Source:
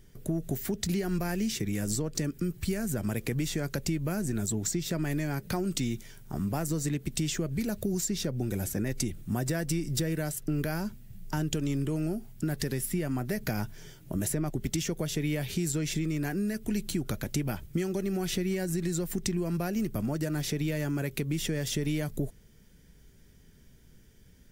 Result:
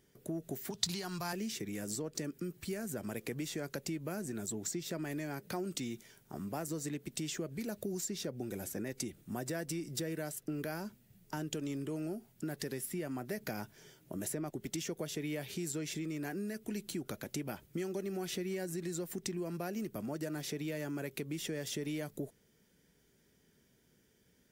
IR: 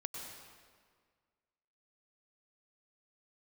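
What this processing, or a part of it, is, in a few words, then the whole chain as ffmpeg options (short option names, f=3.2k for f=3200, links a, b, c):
filter by subtraction: -filter_complex "[0:a]asettb=1/sr,asplit=3[a][b][c];[a]atrim=end=0.704[d];[b]atrim=start=0.7:end=1.33,asetpts=PTS-STARTPTS,afade=t=in:d=0.004:c=qsin,afade=t=out:st=0.626:d=0.004:c=qsin,equalizer=f=125:t=o:w=1:g=9,equalizer=f=250:t=o:w=1:g=-9,equalizer=f=500:t=o:w=1:g=-7,equalizer=f=1k:t=o:w=1:g=10,equalizer=f=2k:t=o:w=1:g=-4,equalizer=f=4k:t=o:w=1:g=12,equalizer=f=8k:t=o:w=1:g=4[e];[c]atrim=start=1.326[f];[d][e]acrossfade=d=0.004:c1=hsin:c2=qsin[g];[g][f]acrossfade=d=0.004:c1=qsin:c2=hsin,asplit=2[h][i];[i]lowpass=410,volume=-1[j];[h][j]amix=inputs=2:normalize=0,volume=-7dB"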